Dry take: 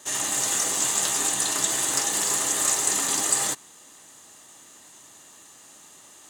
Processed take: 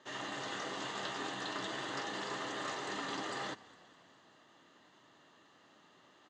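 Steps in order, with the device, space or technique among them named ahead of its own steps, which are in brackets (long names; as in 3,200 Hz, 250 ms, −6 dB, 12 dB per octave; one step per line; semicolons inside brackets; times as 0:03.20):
frequency-shifting delay pedal into a guitar cabinet (echo with shifted repeats 204 ms, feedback 63%, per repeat −34 Hz, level −21.5 dB; loudspeaker in its box 110–3,700 Hz, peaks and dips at 820 Hz −3 dB, 2,400 Hz −7 dB, 3,600 Hz −3 dB)
level −6.5 dB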